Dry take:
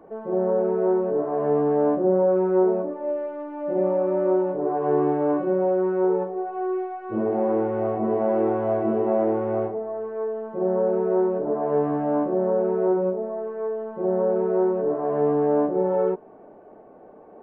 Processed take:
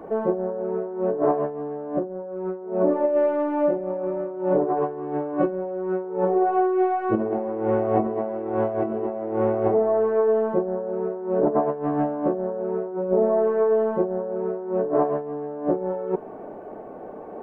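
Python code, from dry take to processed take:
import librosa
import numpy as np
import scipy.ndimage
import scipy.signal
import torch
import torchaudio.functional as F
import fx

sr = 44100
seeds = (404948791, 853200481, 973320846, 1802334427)

y = fx.over_compress(x, sr, threshold_db=-27.0, ratio=-0.5)
y = y * librosa.db_to_amplitude(4.5)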